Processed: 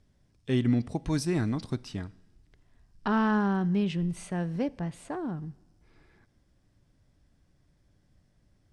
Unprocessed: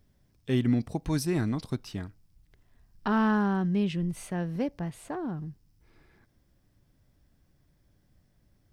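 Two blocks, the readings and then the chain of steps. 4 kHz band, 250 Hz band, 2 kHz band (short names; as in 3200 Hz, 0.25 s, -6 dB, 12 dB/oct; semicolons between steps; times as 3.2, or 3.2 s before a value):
0.0 dB, 0.0 dB, 0.0 dB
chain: LPF 9700 Hz 24 dB/oct; two-slope reverb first 0.94 s, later 3 s, from -18 dB, DRR 20 dB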